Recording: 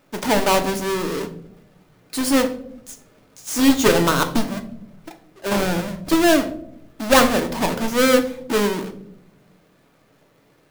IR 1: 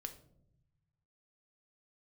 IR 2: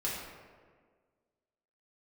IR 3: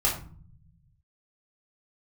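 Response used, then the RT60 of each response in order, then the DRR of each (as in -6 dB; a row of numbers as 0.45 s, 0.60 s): 1; 0.75 s, 1.7 s, 0.45 s; 5.5 dB, -6.5 dB, -6.5 dB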